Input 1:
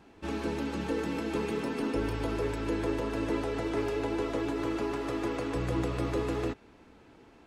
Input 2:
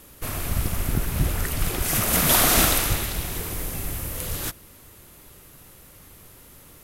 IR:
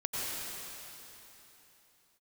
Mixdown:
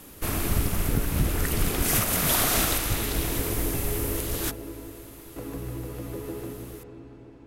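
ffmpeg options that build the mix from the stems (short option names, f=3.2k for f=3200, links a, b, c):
-filter_complex "[0:a]lowshelf=f=490:g=12,acompressor=threshold=-27dB:ratio=4,volume=-10dB,asplit=3[a][b][c];[a]atrim=end=4.54,asetpts=PTS-STARTPTS,afade=t=out:st=4.536:d=0.004:c=hsin[d];[b]atrim=start=4.54:end=5.36,asetpts=PTS-STARTPTS,volume=0[e];[c]atrim=start=5.36,asetpts=PTS-STARTPTS,afade=t=in:d=0.004:c=hsin[f];[d][e][f]concat=n=3:v=0:a=1,asplit=2[g][h];[h]volume=-4.5dB[i];[1:a]volume=1dB[j];[2:a]atrim=start_sample=2205[k];[i][k]afir=irnorm=-1:irlink=0[l];[g][j][l]amix=inputs=3:normalize=0,alimiter=limit=-12dB:level=0:latency=1:release=463"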